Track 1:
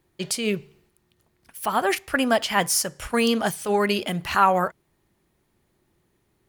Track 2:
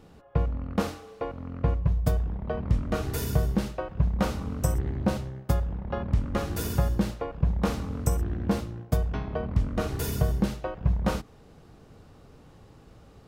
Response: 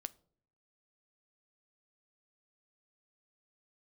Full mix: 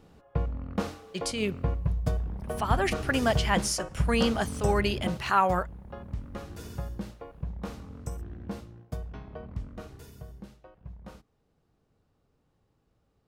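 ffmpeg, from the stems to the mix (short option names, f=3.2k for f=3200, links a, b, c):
-filter_complex "[0:a]adelay=950,volume=-5dB[a];[1:a]volume=-3.5dB,afade=t=out:st=4.89:d=0.35:silence=0.421697,afade=t=out:st=9.54:d=0.58:silence=0.354813[b];[a][b]amix=inputs=2:normalize=0,acrossover=split=9700[c][d];[d]acompressor=threshold=-60dB:ratio=4:attack=1:release=60[e];[c][e]amix=inputs=2:normalize=0"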